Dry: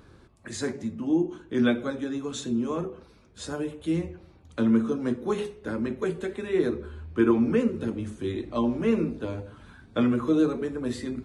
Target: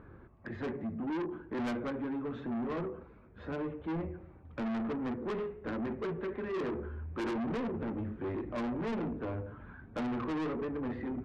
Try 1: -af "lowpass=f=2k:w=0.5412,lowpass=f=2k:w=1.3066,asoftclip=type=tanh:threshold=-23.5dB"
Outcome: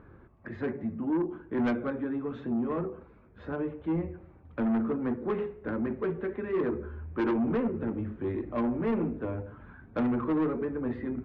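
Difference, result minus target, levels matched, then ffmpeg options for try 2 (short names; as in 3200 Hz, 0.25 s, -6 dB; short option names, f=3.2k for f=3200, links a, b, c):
soft clip: distortion -6 dB
-af "lowpass=f=2k:w=0.5412,lowpass=f=2k:w=1.3066,asoftclip=type=tanh:threshold=-32.5dB"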